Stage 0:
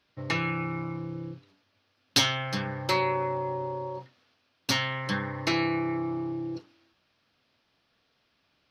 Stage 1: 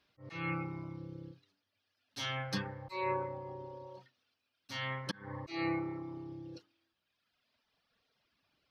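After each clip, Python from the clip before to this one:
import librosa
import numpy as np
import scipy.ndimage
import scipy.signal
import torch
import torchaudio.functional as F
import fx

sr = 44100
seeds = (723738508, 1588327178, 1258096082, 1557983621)

y = fx.auto_swell(x, sr, attack_ms=230.0)
y = fx.dereverb_blind(y, sr, rt60_s=1.7)
y = y * 10.0 ** (-3.5 / 20.0)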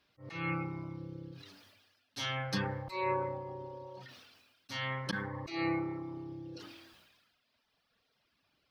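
y = fx.sustainer(x, sr, db_per_s=39.0)
y = y * 10.0 ** (1.5 / 20.0)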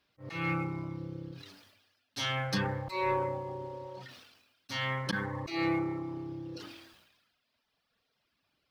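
y = fx.leveller(x, sr, passes=1)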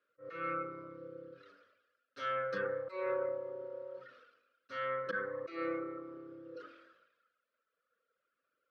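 y = fx.double_bandpass(x, sr, hz=830.0, octaves=1.4)
y = y * 10.0 ** (5.5 / 20.0)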